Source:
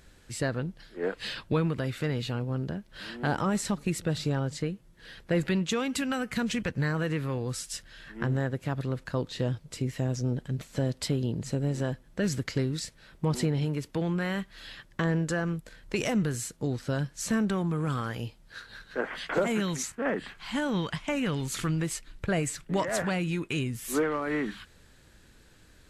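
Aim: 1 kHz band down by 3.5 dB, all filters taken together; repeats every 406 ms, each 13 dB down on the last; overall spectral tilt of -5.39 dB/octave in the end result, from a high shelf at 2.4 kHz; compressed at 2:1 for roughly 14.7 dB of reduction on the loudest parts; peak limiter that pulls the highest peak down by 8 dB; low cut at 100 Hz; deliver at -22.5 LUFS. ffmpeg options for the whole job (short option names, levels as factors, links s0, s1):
-af "highpass=100,equalizer=f=1000:t=o:g=-3.5,highshelf=f=2400:g=-6,acompressor=threshold=0.00282:ratio=2,alimiter=level_in=4.47:limit=0.0631:level=0:latency=1,volume=0.224,aecho=1:1:406|812|1218:0.224|0.0493|0.0108,volume=16.8"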